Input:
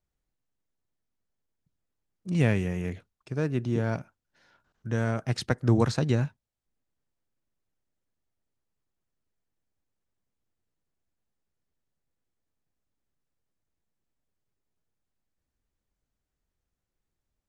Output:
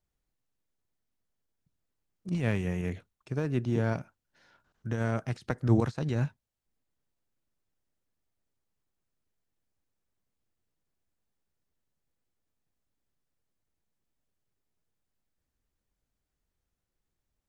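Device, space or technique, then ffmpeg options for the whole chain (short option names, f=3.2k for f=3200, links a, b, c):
de-esser from a sidechain: -filter_complex "[0:a]asplit=2[a][b];[b]highpass=f=5.4k:w=0.5412,highpass=f=5.4k:w=1.3066,apad=whole_len=770958[c];[a][c]sidechaincompress=threshold=-55dB:ratio=8:attack=2.2:release=51,asettb=1/sr,asplit=3[d][e][f];[d]atrim=end=2.574[g];[e]atrim=start=2.57:end=3.46,asetpts=PTS-STARTPTS,afade=t=in:d=0.004:c=qsin,afade=t=out:st=0.886:d=0.004:c=qsin,bandreject=f=4.9k:w=13[h];[f]atrim=start=3.456[i];[g][h]acrossfade=d=0.004:c1=hsin:c2=qsin[j];[j][i]acrossfade=d=0.004:c1=qsin:c2=hsin"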